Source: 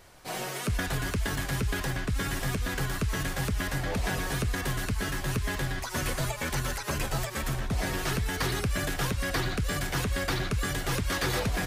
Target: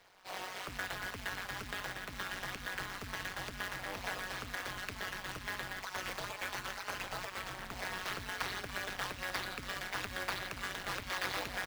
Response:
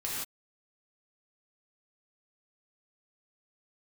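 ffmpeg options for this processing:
-filter_complex "[0:a]acrossover=split=540 5800:gain=0.178 1 0.0794[link_01][link_02][link_03];[link_01][link_02][link_03]amix=inputs=3:normalize=0,acrusher=bits=2:mode=log:mix=0:aa=0.000001,asplit=2[link_04][link_05];[link_05]aecho=0:1:285:0.188[link_06];[link_04][link_06]amix=inputs=2:normalize=0,tremolo=f=190:d=0.974,volume=-1.5dB"

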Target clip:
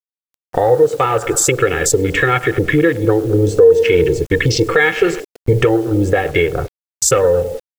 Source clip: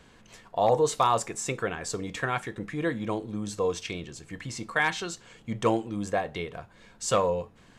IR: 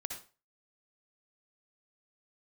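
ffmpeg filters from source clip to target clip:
-filter_complex "[0:a]aecho=1:1:104|208|312|416|520:0.141|0.0777|0.0427|0.0235|0.0129,agate=range=-18dB:threshold=-43dB:ratio=16:detection=peak,aecho=1:1:2.3:0.96,acompressor=threshold=-37dB:ratio=4,asettb=1/sr,asplit=3[link_01][link_02][link_03];[link_01]atrim=end=3.294[link_04];[link_02]atrim=start=3.29:end=5.61,asetpts=PTS-STARTPTS,afade=type=in:duration=0.004:curve=qsin,afade=type=out:start_time=2.316:duration=0.004:curve=qsin,equalizer=frequency=450:width=5.1:gain=10[link_05];[link_03]atrim=start=5.606[link_06];[link_04][link_05]acrossfade=duration=0.004:curve1=hsin:curve2=qsin[link_07];[link_07][link_06]acrossfade=duration=0.004:curve1=qsin:curve2=hsin,afwtdn=0.00562,equalizer=frequency=940:width=3.4:gain=-14,acrusher=bits=10:mix=0:aa=0.000001,alimiter=level_in=27dB:limit=-1dB:release=50:level=0:latency=1,volume=-1dB"

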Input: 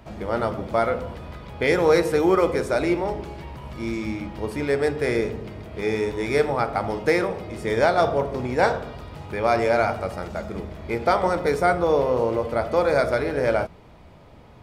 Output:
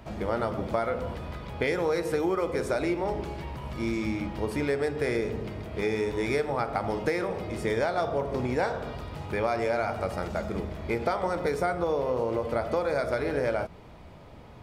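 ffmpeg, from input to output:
ffmpeg -i in.wav -af "acompressor=threshold=-24dB:ratio=6" out.wav

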